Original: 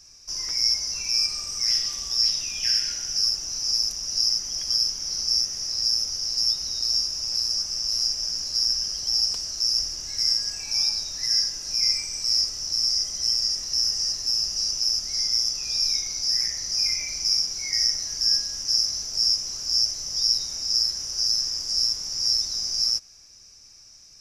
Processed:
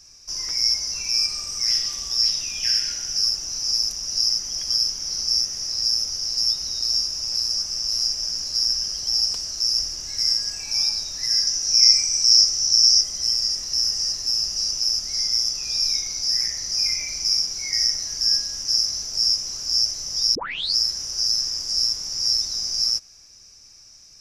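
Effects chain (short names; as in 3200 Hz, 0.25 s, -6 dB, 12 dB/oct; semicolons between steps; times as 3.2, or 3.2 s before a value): 11.47–13.01 bell 5800 Hz +9.5 dB 0.38 oct; 20.35 tape start 0.41 s; gain +1.5 dB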